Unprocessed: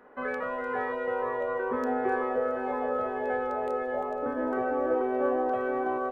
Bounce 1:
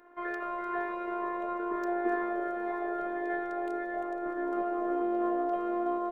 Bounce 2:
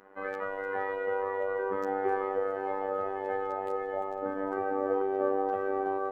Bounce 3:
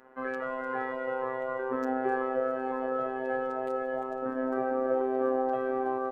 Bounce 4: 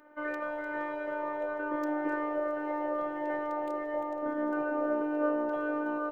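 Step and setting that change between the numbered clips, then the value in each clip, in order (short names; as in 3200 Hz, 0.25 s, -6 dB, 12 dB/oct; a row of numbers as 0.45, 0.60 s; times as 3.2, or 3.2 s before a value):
robotiser, frequency: 350, 97, 130, 300 Hz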